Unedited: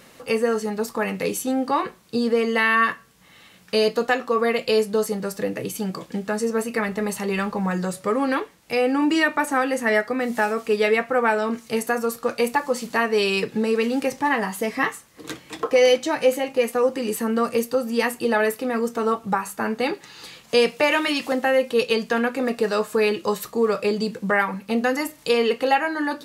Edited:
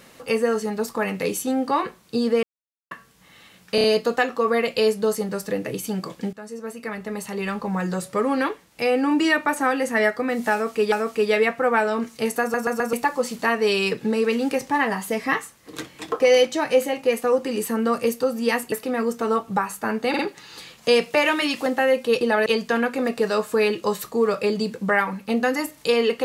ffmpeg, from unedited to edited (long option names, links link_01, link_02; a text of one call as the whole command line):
ffmpeg -i in.wav -filter_complex "[0:a]asplit=17[link_01][link_02][link_03][link_04][link_05][link_06][link_07][link_08][link_09][link_10][link_11][link_12][link_13][link_14][link_15][link_16][link_17];[link_01]atrim=end=2.43,asetpts=PTS-STARTPTS,afade=type=out:start_time=2.426:duration=0.004:curve=hsin[link_18];[link_02]atrim=start=2.43:end=2.91,asetpts=PTS-STARTPTS,volume=0[link_19];[link_03]atrim=start=2.91:end=3.782,asetpts=PTS-STARTPTS,afade=type=in:duration=0.004:curve=hsin[link_20];[link_04]atrim=start=3.748:end=3.782[link_21];[link_05]atrim=start=3.748:end=3.782[link_22];[link_06]atrim=start=3.748:end=6.24,asetpts=PTS-STARTPTS,afade=type=out:start_time=2.488:duration=0.004:curve=hsin:silence=0.16788[link_23];[link_07]atrim=start=6.24:end=10.832,asetpts=PTS-STARTPTS,afade=type=in:duration=1.71:silence=0.16788[link_24];[link_08]atrim=start=10.428:end=12.052[link_25];[link_09]atrim=start=11.918:end=12.052[link_26];[link_10]atrim=start=11.918:end=12.052[link_27];[link_11]atrim=start=11.918:end=12.052[link_28];[link_12]atrim=start=12.438:end=18.232[link_29];[link_13]atrim=start=18.478:end=19.902[link_30];[link_14]atrim=start=19.848:end=19.902[link_31];[link_15]atrim=start=19.848:end=21.872[link_32];[link_16]atrim=start=18.228:end=18.482[link_33];[link_17]atrim=start=21.868[link_34];[link_18][link_19][link_20]concat=n=3:v=0:a=1[link_35];[link_35][link_21]acrossfade=duration=0.004:curve1=hsin:curve2=hsin[link_36];[link_36][link_22]acrossfade=duration=0.004:curve1=hsin:curve2=hsin[link_37];[link_23][link_24]concat=n=2:v=0:a=1[link_38];[link_37][link_38]acrossfade=duration=0.004:curve1=hsin:curve2=hsin[link_39];[link_39][link_25]acrossfade=duration=0.004:curve1=hsin:curve2=hsin[link_40];[link_40][link_26]acrossfade=duration=0.004:curve1=hsin:curve2=hsin[link_41];[link_41][link_27]acrossfade=duration=0.004:curve1=hsin:curve2=hsin[link_42];[link_42][link_28]acrossfade=duration=0.004:curve1=hsin:curve2=hsin[link_43];[link_43][link_29]acrossfade=duration=0.004:curve1=hsin:curve2=hsin[link_44];[link_44][link_30]acrossfade=duration=0.004:curve1=hsin:curve2=hsin[link_45];[link_45][link_31]acrossfade=duration=0.004:curve1=hsin:curve2=hsin[link_46];[link_46][link_32]acrossfade=duration=0.004:curve1=hsin:curve2=hsin[link_47];[link_47][link_33]acrossfade=duration=0.004:curve1=hsin:curve2=hsin[link_48];[link_48][link_34]acrossfade=duration=0.004:curve1=hsin:curve2=hsin" out.wav